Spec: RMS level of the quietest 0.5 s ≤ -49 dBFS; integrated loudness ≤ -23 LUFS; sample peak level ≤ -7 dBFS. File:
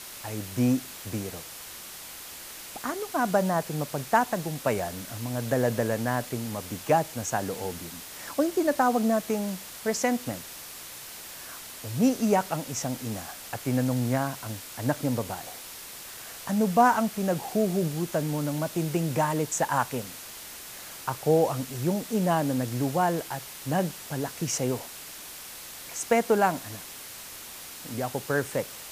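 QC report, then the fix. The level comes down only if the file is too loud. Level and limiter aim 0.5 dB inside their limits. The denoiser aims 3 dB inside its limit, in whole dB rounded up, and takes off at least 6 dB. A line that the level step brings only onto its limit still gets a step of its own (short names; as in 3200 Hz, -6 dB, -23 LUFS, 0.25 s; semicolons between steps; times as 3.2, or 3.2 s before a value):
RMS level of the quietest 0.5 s -42 dBFS: fail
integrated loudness -28.0 LUFS: OK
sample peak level -8.5 dBFS: OK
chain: denoiser 10 dB, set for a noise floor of -42 dBFS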